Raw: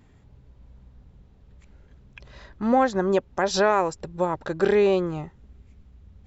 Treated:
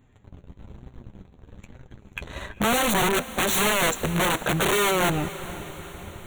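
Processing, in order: sample leveller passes 3; in parallel at +1 dB: limiter -17 dBFS, peak gain reduction 8 dB; on the sum: soft clip -14 dBFS, distortion -13 dB; flange 1.1 Hz, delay 7.4 ms, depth 4.8 ms, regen +35%; wrapped overs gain 17.5 dB; Butterworth band-stop 5000 Hz, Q 2.4; on a send: diffused feedback echo 0.459 s, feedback 58%, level -15 dB

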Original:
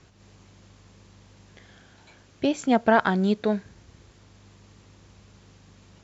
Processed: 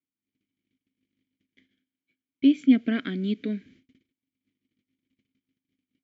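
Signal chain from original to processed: gate -48 dBFS, range -35 dB; vowel filter i; gain +9 dB

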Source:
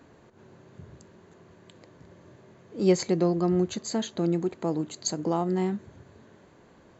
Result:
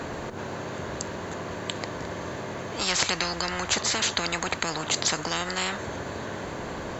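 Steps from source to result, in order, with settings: spectral compressor 10:1; gain +4.5 dB

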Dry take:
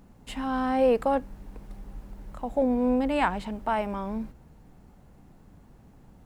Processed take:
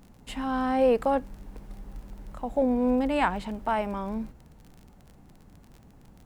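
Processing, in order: crackle 33/s -40 dBFS

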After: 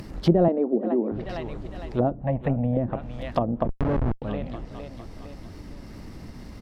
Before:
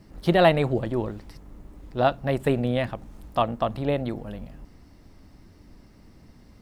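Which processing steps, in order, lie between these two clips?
median filter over 5 samples; 2.22–2.77 fixed phaser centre 1400 Hz, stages 6; on a send: feedback echo 0.457 s, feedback 41%, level -16 dB; on the sum: dynamic EQ 270 Hz, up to +4 dB, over -34 dBFS, Q 1.1; 0.48–1.12 elliptic high-pass 210 Hz, stop band 40 dB; high shelf 7900 Hz +9 dB; 3.64–4.22 Schmitt trigger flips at -22.5 dBFS; in parallel at +1.5 dB: compressor 6:1, threshold -34 dBFS, peak gain reduction 20.5 dB; on the sum: treble ducked by the level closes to 470 Hz, closed at -18 dBFS; upward compressor, threshold -33 dBFS

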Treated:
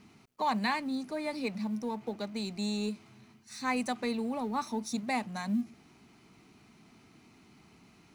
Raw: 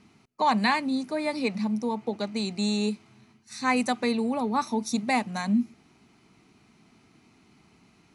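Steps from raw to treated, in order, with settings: G.711 law mismatch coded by mu; gain -7.5 dB

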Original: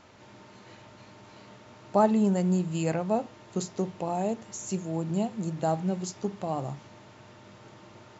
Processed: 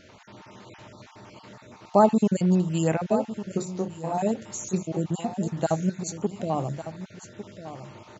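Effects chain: random spectral dropouts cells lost 31%; echo 1.153 s -12.5 dB; 3.57–4.13 detuned doubles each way 22 cents -> 39 cents; gain +4.5 dB

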